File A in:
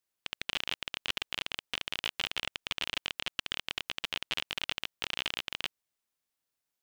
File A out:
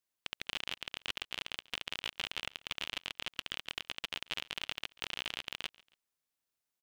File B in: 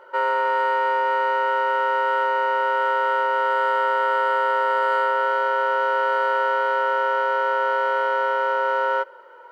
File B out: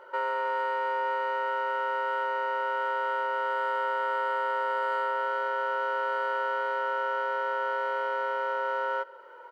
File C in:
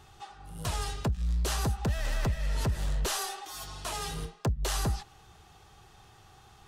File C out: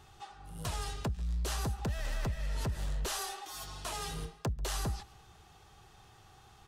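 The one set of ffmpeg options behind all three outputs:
-filter_complex "[0:a]acompressor=threshold=0.0224:ratio=1.5,asplit=2[s0][s1];[s1]aecho=0:1:139|278:0.0668|0.0254[s2];[s0][s2]amix=inputs=2:normalize=0,volume=0.75"

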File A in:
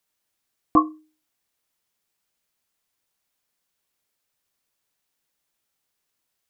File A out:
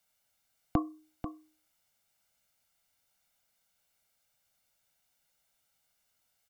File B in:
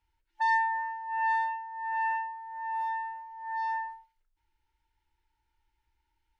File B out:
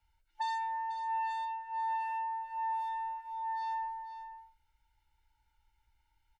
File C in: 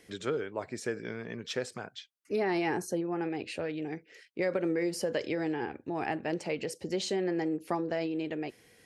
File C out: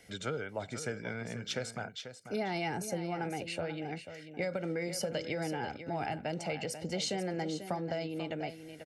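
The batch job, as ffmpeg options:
-filter_complex "[0:a]aecho=1:1:1.4:0.58,acrossover=split=280|3000[s0][s1][s2];[s1]acompressor=threshold=0.02:ratio=6[s3];[s0][s3][s2]amix=inputs=3:normalize=0,aecho=1:1:490:0.299"

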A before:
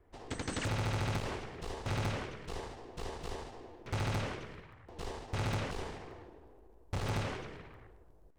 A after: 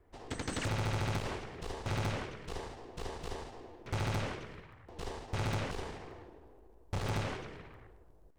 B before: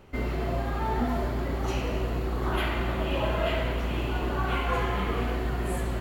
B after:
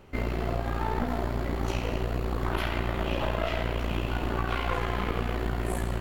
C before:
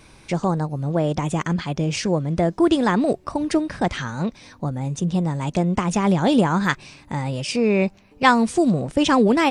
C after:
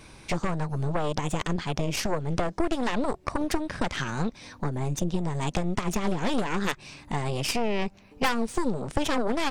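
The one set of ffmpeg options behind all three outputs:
-af "aeval=exprs='0.891*(cos(1*acos(clip(val(0)/0.891,-1,1)))-cos(1*PI/2))+0.2*(cos(8*acos(clip(val(0)/0.891,-1,1)))-cos(8*PI/2))':c=same,acompressor=threshold=0.0708:ratio=4"

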